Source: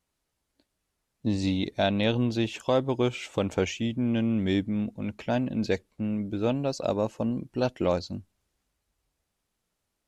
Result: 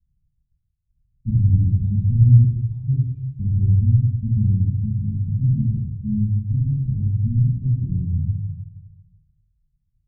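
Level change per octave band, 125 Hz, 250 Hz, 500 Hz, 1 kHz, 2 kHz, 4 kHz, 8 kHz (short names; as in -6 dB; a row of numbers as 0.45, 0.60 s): +17.5 dB, 0.0 dB, under -25 dB, under -40 dB, under -40 dB, under -40 dB, under -35 dB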